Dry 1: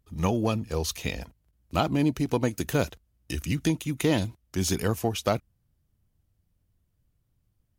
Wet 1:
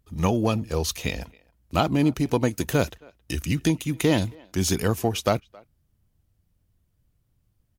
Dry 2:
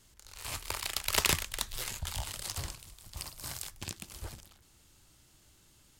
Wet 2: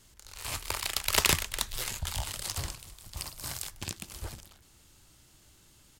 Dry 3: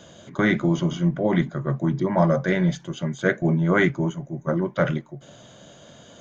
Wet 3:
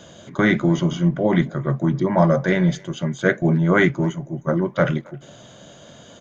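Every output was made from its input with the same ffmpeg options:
ffmpeg -i in.wav -filter_complex "[0:a]asplit=2[link_01][link_02];[link_02]adelay=270,highpass=300,lowpass=3400,asoftclip=type=hard:threshold=-13.5dB,volume=-25dB[link_03];[link_01][link_03]amix=inputs=2:normalize=0,volume=3dB" out.wav

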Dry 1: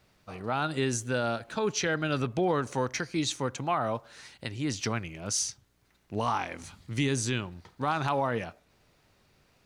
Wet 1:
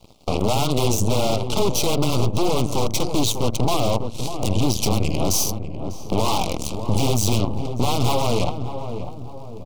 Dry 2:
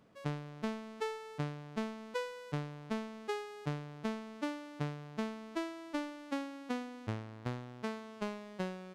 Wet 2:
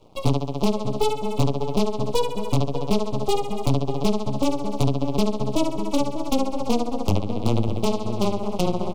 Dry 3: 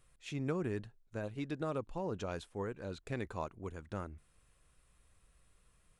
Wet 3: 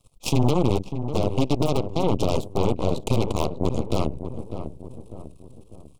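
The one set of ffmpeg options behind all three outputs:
ffmpeg -i in.wav -filter_complex "[0:a]bandreject=frequency=60:width_type=h:width=6,bandreject=frequency=120:width_type=h:width=6,bandreject=frequency=180:width_type=h:width=6,afreqshift=-15,equalizer=frequency=110:width_type=o:width=0.37:gain=6,acompressor=threshold=-52dB:ratio=2,highshelf=frequency=3700:gain=-4.5,aeval=exprs='0.0119*(abs(mod(val(0)/0.0119+3,4)-2)-1)':channel_layout=same,aeval=exprs='0.0126*(cos(1*acos(clip(val(0)/0.0126,-1,1)))-cos(1*PI/2))+0.00501*(cos(4*acos(clip(val(0)/0.0126,-1,1)))-cos(4*PI/2))+0.00112*(cos(5*acos(clip(val(0)/0.0126,-1,1)))-cos(5*PI/2))+0.00251*(cos(7*acos(clip(val(0)/0.0126,-1,1)))-cos(7*PI/2))':channel_layout=same,asuperstop=centerf=1700:order=4:qfactor=0.94,asplit=2[link_01][link_02];[link_02]adelay=597,lowpass=frequency=1100:poles=1,volume=-9.5dB,asplit=2[link_03][link_04];[link_04]adelay=597,lowpass=frequency=1100:poles=1,volume=0.47,asplit=2[link_05][link_06];[link_06]adelay=597,lowpass=frequency=1100:poles=1,volume=0.47,asplit=2[link_07][link_08];[link_08]adelay=597,lowpass=frequency=1100:poles=1,volume=0.47,asplit=2[link_09][link_10];[link_10]adelay=597,lowpass=frequency=1100:poles=1,volume=0.47[link_11];[link_01][link_03][link_05][link_07][link_09][link_11]amix=inputs=6:normalize=0,alimiter=level_in=33.5dB:limit=-1dB:release=50:level=0:latency=1,volume=-8dB" out.wav

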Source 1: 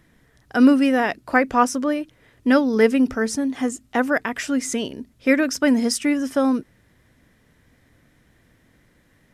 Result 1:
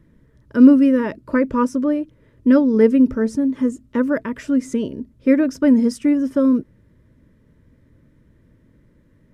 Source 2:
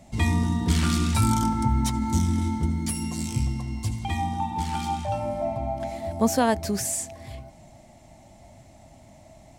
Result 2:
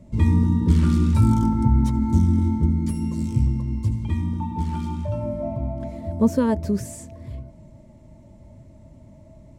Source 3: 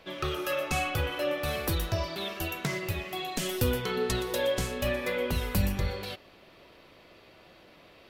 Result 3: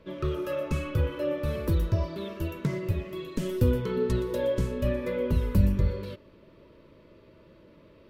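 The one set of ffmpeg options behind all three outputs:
ffmpeg -i in.wav -af "asuperstop=centerf=750:order=12:qfactor=4.1,tiltshelf=frequency=920:gain=9,volume=-3dB" out.wav

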